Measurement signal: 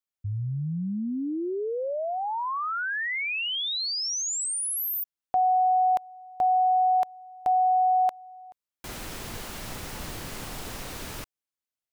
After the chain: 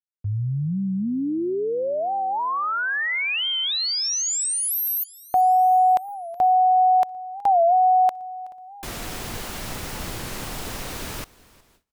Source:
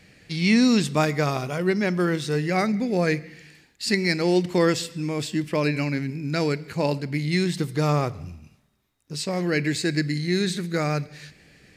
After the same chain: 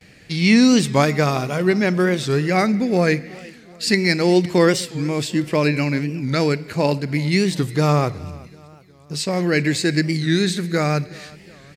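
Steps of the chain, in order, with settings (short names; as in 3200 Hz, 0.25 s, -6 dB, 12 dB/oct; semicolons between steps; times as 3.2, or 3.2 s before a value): on a send: feedback echo 0.374 s, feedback 52%, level -22.5 dB; on the sum: gate with hold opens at -47 dBFS, closes at -52 dBFS, hold 0.322 s, range -26 dB; record warp 45 rpm, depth 160 cents; gain +5 dB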